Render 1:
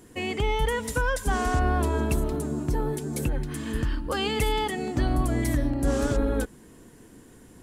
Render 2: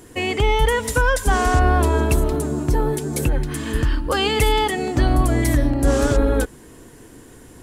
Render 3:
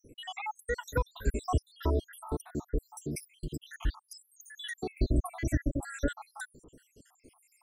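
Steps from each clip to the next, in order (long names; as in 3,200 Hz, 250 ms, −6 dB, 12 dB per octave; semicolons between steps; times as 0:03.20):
parametric band 200 Hz −7 dB 0.56 octaves; level +8 dB
time-frequency cells dropped at random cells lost 83%; level −8.5 dB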